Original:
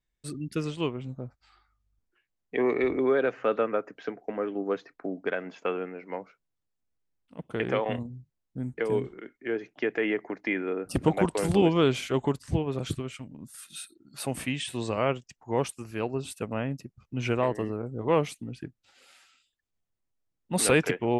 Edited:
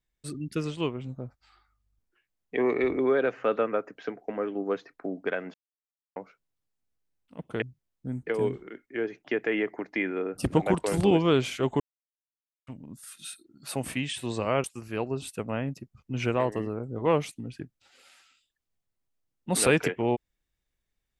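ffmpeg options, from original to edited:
-filter_complex "[0:a]asplit=7[a][b][c][d][e][f][g];[a]atrim=end=5.54,asetpts=PTS-STARTPTS,afade=t=out:st=5.536:d=0.004:c=hsin[h];[b]atrim=start=5.54:end=6.16,asetpts=PTS-STARTPTS,volume=0[i];[c]atrim=start=6.16:end=7.622,asetpts=PTS-STARTPTS,afade=t=in:d=0.004:c=hsin[j];[d]atrim=start=8.128:end=12.31,asetpts=PTS-STARTPTS,afade=t=out:st=4.178:d=0.004:c=hsin[k];[e]atrim=start=12.31:end=13.18,asetpts=PTS-STARTPTS,volume=0[l];[f]atrim=start=13.18:end=15.152,asetpts=PTS-STARTPTS,afade=t=in:d=0.004:c=hsin[m];[g]atrim=start=15.668[n];[h][i][j]concat=n=3:v=0:a=1[o];[k][l][m]concat=n=3:v=0:a=1[p];[o][p]acrossfade=d=0.004:c1=hsin:c2=hsin[q];[q][n]acrossfade=d=0.004:c1=hsin:c2=hsin"

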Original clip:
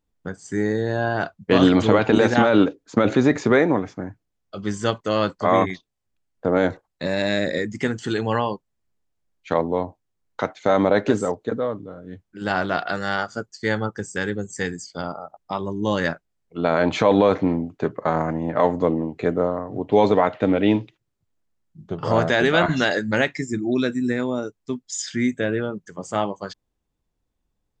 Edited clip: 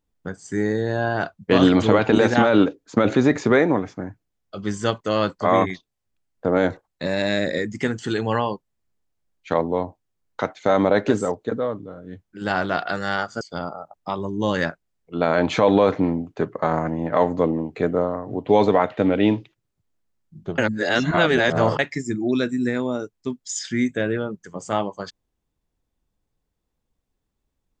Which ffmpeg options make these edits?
-filter_complex "[0:a]asplit=4[a][b][c][d];[a]atrim=end=13.412[e];[b]atrim=start=14.838:end=22.012[f];[c]atrim=start=22.008:end=23.222,asetpts=PTS-STARTPTS,areverse[g];[d]atrim=start=23.218[h];[e][f]acrossfade=d=0.004:c1=hsin:c2=hsin[i];[i][g]acrossfade=d=0.004:c1=hsin:c2=hsin[j];[j][h]acrossfade=d=0.004:c1=hsin:c2=hsin"

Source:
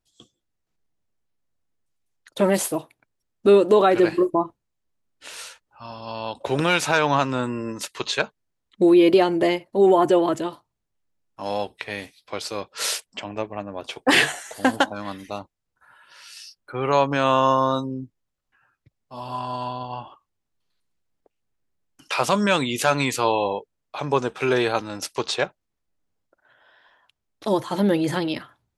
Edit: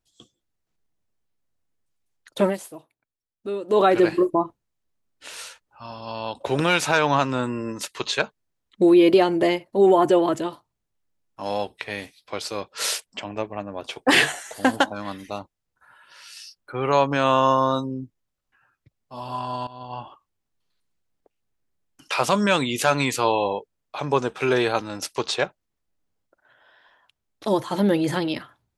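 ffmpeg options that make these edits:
-filter_complex "[0:a]asplit=4[a][b][c][d];[a]atrim=end=2.57,asetpts=PTS-STARTPTS,afade=t=out:st=2.44:d=0.13:silence=0.188365[e];[b]atrim=start=2.57:end=3.67,asetpts=PTS-STARTPTS,volume=-14.5dB[f];[c]atrim=start=3.67:end=19.67,asetpts=PTS-STARTPTS,afade=t=in:d=0.13:silence=0.188365,afade=t=out:st=15.996:d=0.004:c=hsin:silence=0.11885[g];[d]atrim=start=19.67,asetpts=PTS-STARTPTS,afade=t=in:d=0.33:silence=0.11885[h];[e][f][g][h]concat=n=4:v=0:a=1"

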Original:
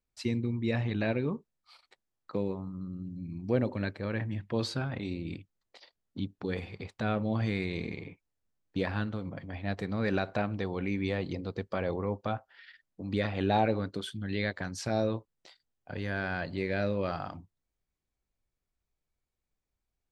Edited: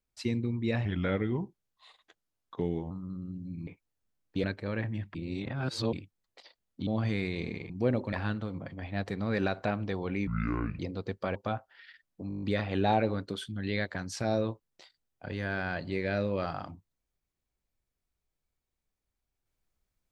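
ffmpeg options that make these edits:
-filter_complex "[0:a]asplit=20[a][b][c][d][e][f][g][h][i][j][k][l][m][n][o][p][q][r][s][t];[a]atrim=end=0.854[u];[b]atrim=start=0.85:end=2.62,asetpts=PTS-STARTPTS,asetrate=37926,aresample=44100[v];[c]atrim=start=2.616:end=3.382[w];[d]atrim=start=8.068:end=8.842[x];[e]atrim=start=3.808:end=4.522[y];[f]atrim=start=4.518:end=5.302,asetpts=PTS-STARTPTS,areverse[z];[g]atrim=start=5.298:end=6.242[aa];[h]atrim=start=7.238:end=8.072[ab];[i]atrim=start=3.378:end=3.812[ac];[j]atrim=start=8.838:end=10.984[ad];[k]atrim=start=10.98:end=11.29,asetpts=PTS-STARTPTS,asetrate=26019,aresample=44100,atrim=end_sample=23171,asetpts=PTS-STARTPTS[ae];[l]atrim=start=11.286:end=11.852[af];[m]atrim=start=12.148:end=13.102[ag];[n]atrim=start=13.078:end=13.102[ah];[o]atrim=start=13.078:end=13.102[ai];[p]atrim=start=13.078:end=13.102[aj];[q]atrim=start=13.078:end=13.102[ak];[r]atrim=start=13.078:end=13.102[al];[s]atrim=start=13.078:end=13.102[am];[t]atrim=start=13.078[an];[u][v]acrossfade=d=0.004:c1=hsin:c2=hsin[ao];[ao][w]acrossfade=d=0.004:c1=hsin:c2=hsin[ap];[ap][x]acrossfade=d=0.004:c1=hsin:c2=hsin[aq];[aq][y]acrossfade=d=0.004:c1=hsin:c2=hsin[ar];[ar][z]acrossfade=d=0.004:c1=hsin:c2=hsin[as];[as][aa]acrossfade=d=0.004:c1=hsin:c2=hsin[at];[at][ab]acrossfade=d=0.004:c1=hsin:c2=hsin[au];[au][ac]acrossfade=d=0.004:c1=hsin:c2=hsin[av];[av][ad]acrossfade=d=0.004:c1=hsin:c2=hsin[aw];[aw][ae]acrossfade=d=0.004:c1=hsin:c2=hsin[ax];[ax][af]acrossfade=d=0.004:c1=hsin:c2=hsin[ay];[ay][ag]acrossfade=d=0.004:c1=hsin:c2=hsin[az];[az][ah]acrossfade=d=0.004:c1=hsin:c2=hsin[ba];[ba][ai]acrossfade=d=0.004:c1=hsin:c2=hsin[bb];[bb][aj]acrossfade=d=0.004:c1=hsin:c2=hsin[bc];[bc][ak]acrossfade=d=0.004:c1=hsin:c2=hsin[bd];[bd][al]acrossfade=d=0.004:c1=hsin:c2=hsin[be];[be][am]acrossfade=d=0.004:c1=hsin:c2=hsin[bf];[bf][an]acrossfade=d=0.004:c1=hsin:c2=hsin"

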